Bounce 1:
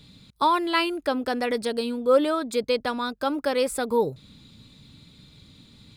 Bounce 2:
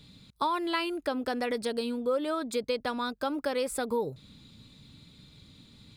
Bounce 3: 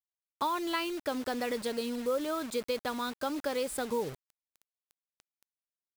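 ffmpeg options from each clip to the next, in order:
-af "acompressor=threshold=-23dB:ratio=4,volume=-3dB"
-af "acrusher=bits=6:mix=0:aa=0.000001,volume=-2.5dB"

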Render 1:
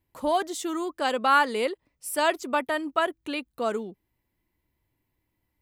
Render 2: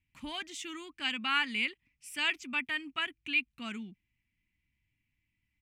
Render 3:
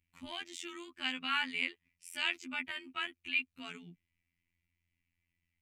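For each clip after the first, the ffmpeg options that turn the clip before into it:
-af "firequalizer=gain_entry='entry(230,0);entry(480,-27);entry(800,-15);entry(1200,-10);entry(2400,12);entry(4000,-4);entry(6000,-2);entry(12000,-14)':delay=0.05:min_phase=1,volume=-4dB"
-af "afftfilt=real='hypot(re,im)*cos(PI*b)':imag='0':win_size=2048:overlap=0.75"

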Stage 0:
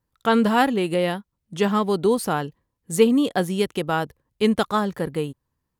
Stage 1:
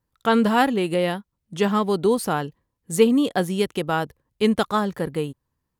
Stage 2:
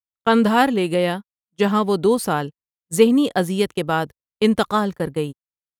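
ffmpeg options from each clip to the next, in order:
-af anull
-af "agate=range=-38dB:threshold=-30dB:ratio=16:detection=peak,volume=2.5dB"

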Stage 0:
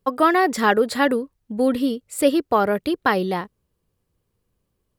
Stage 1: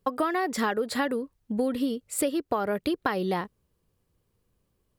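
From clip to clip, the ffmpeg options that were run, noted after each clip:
-af "acompressor=threshold=-23dB:ratio=12"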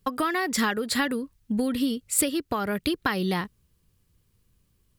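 -af "equalizer=f=590:t=o:w=2.2:g=-12,volume=8dB"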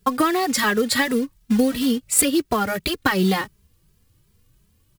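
-filter_complex "[0:a]acrusher=bits=4:mode=log:mix=0:aa=0.000001,asplit=2[a][b];[b]adelay=2.6,afreqshift=2.8[c];[a][c]amix=inputs=2:normalize=1,volume=9dB"

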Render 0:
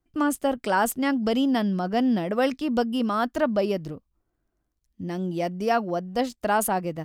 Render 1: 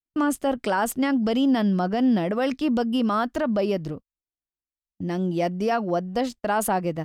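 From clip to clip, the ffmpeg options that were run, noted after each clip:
-af "agate=range=-32dB:threshold=-39dB:ratio=16:detection=peak,highshelf=f=9k:g=-7.5,alimiter=limit=-18dB:level=0:latency=1:release=56,volume=3.5dB"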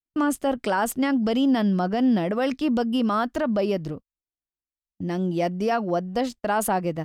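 -af anull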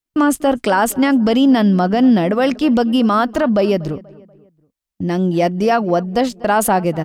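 -filter_complex "[0:a]asplit=2[a][b];[b]adelay=241,lowpass=f=2.4k:p=1,volume=-21dB,asplit=2[c][d];[d]adelay=241,lowpass=f=2.4k:p=1,volume=0.45,asplit=2[e][f];[f]adelay=241,lowpass=f=2.4k:p=1,volume=0.45[g];[a][c][e][g]amix=inputs=4:normalize=0,volume=8.5dB"

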